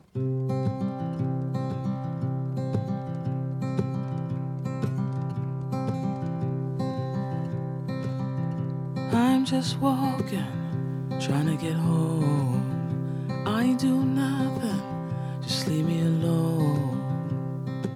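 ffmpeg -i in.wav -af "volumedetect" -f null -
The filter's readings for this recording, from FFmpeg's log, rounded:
mean_volume: -26.9 dB
max_volume: -10.6 dB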